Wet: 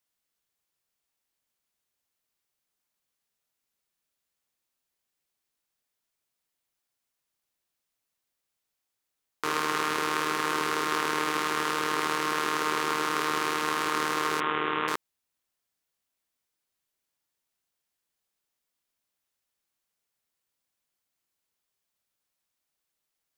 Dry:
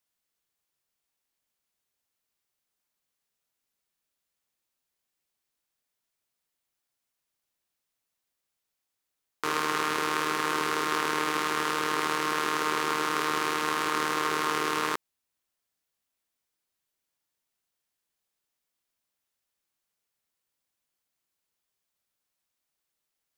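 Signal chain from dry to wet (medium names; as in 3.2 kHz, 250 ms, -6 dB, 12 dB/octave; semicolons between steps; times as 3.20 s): 14.40–14.88 s: steep low-pass 3.6 kHz 96 dB/octave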